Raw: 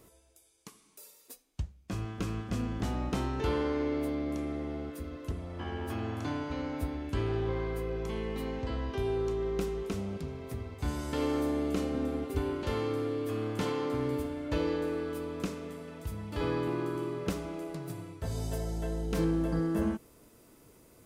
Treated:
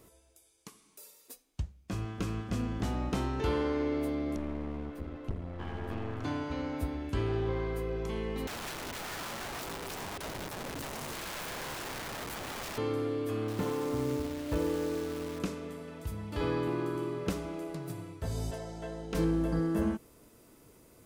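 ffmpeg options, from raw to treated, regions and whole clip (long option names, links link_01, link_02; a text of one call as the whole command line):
ffmpeg -i in.wav -filter_complex "[0:a]asettb=1/sr,asplit=3[link_01][link_02][link_03];[link_01]atrim=end=4.364[link_04];[link_02]atrim=start=4.36:end=6.24,asetpts=PTS-STARTPTS,afade=type=in:duration=0.004:curve=qsin,afade=type=out:start_time=1.876:duration=0.004:curve=qsin,bass=frequency=250:gain=3,treble=frequency=4000:gain=-12,aeval=exprs='clip(val(0),-1,0.00631)':channel_layout=same[link_05];[link_03]atrim=start=6.236[link_06];[link_04][link_05]acrossfade=duration=0.004:curve1=hsin:curve2=qsin[link_07];[link_07][link_06]acrossfade=duration=0.004:curve1=qsin:curve2=hsin,asettb=1/sr,asplit=3[link_08][link_09][link_10];[link_08]atrim=end=8.474[link_11];[link_09]atrim=start=8.47:end=12.78,asetpts=PTS-STARTPTS,afade=type=in:duration=0.004:curve=qsin,afade=type=out:start_time=4.306:duration=0.004:curve=qsin,asubboost=boost=9:cutoff=170,acompressor=threshold=-28dB:ratio=3:attack=3.2:release=140:knee=1:detection=peak,aeval=exprs='(mod(56.2*val(0)+1,2)-1)/56.2':channel_layout=same[link_12];[link_10]atrim=start=12.776[link_13];[link_11][link_12]acrossfade=duration=0.004:curve1=hsin:curve2=qsin[link_14];[link_14][link_13]acrossfade=duration=0.004:curve1=qsin:curve2=hsin,asettb=1/sr,asplit=3[link_15][link_16][link_17];[link_15]atrim=end=13.484[link_18];[link_16]atrim=start=13.48:end=15.39,asetpts=PTS-STARTPTS,afade=type=in:duration=0.004:curve=qsin,afade=type=out:start_time=1.906:duration=0.004:curve=qsin,lowpass=frequency=1300:poles=1,acrusher=bits=8:dc=4:mix=0:aa=0.000001[link_19];[link_17]atrim=start=15.386[link_20];[link_18][link_19]acrossfade=duration=0.004:curve1=hsin:curve2=qsin[link_21];[link_21][link_20]acrossfade=duration=0.004:curve1=qsin:curve2=hsin,asettb=1/sr,asplit=3[link_22][link_23][link_24];[link_22]atrim=end=18.514[link_25];[link_23]atrim=start=18.51:end=19.15,asetpts=PTS-STARTPTS,afade=type=in:duration=0.004:curve=qsin,afade=type=out:start_time=0.636:duration=0.004:curve=qsin,adynamicsmooth=sensitivity=7:basefreq=6800,highpass=frequency=330:poles=1,asplit=2[link_26][link_27];[link_27]adelay=17,volume=-11.5dB[link_28];[link_26][link_28]amix=inputs=2:normalize=0,atrim=end_sample=28224[link_29];[link_24]atrim=start=19.146[link_30];[link_25][link_29]acrossfade=duration=0.004:curve1=hsin:curve2=qsin[link_31];[link_31][link_30]acrossfade=duration=0.004:curve1=qsin:curve2=hsin" out.wav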